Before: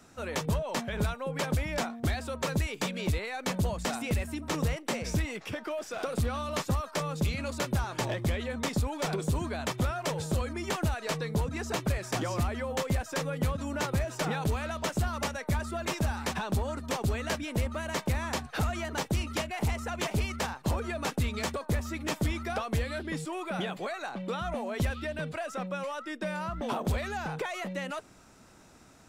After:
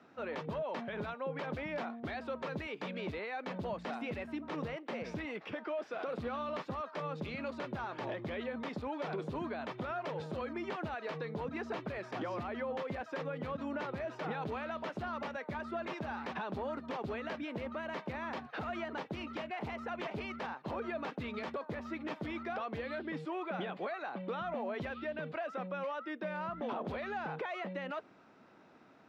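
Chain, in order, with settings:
high-pass filter 220 Hz 12 dB per octave
brickwall limiter −27 dBFS, peak gain reduction 8.5 dB
high-frequency loss of the air 320 metres
level −1 dB

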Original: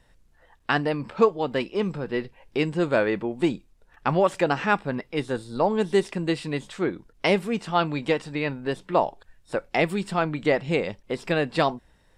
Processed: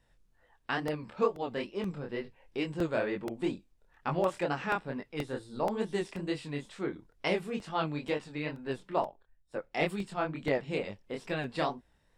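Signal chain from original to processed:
chorus effect 2.2 Hz, delay 20 ms, depth 7.6 ms
regular buffer underruns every 0.48 s, samples 64, repeat, from 0:00.88
0:09.05–0:10.35: multiband upward and downward expander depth 70%
level −6 dB

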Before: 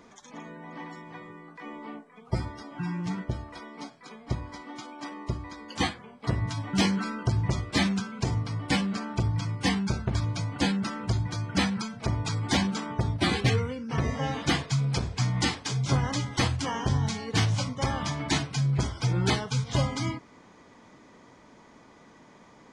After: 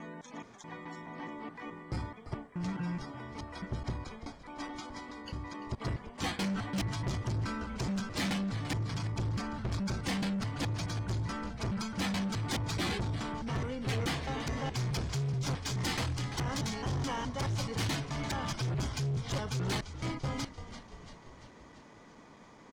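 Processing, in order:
slices reordered back to front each 213 ms, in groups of 3
echo with shifted repeats 341 ms, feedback 58%, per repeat −49 Hz, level −16 dB
soft clipping −28 dBFS, distortion −9 dB
level −1.5 dB

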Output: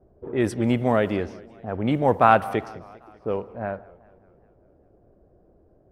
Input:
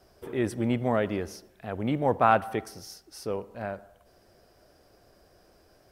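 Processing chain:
low-pass that shuts in the quiet parts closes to 450 Hz, open at −22.5 dBFS
feedback echo with a swinging delay time 199 ms, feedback 59%, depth 179 cents, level −22.5 dB
level +5 dB

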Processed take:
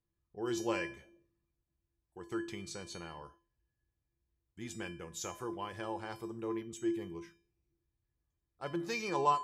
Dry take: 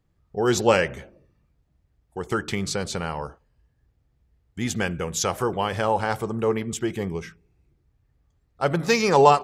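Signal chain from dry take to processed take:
tuned comb filter 340 Hz, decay 0.38 s, harmonics odd, mix 90%

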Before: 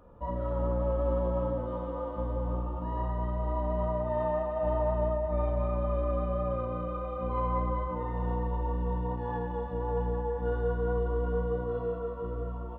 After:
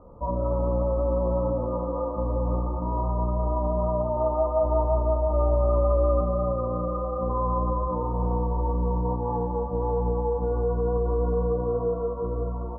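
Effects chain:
elliptic low-pass filter 1,200 Hz, stop band 40 dB
brickwall limiter −24 dBFS, peak gain reduction 5 dB
0:04.15–0:06.21: double-tracking delay 14 ms −3 dB
level +7 dB

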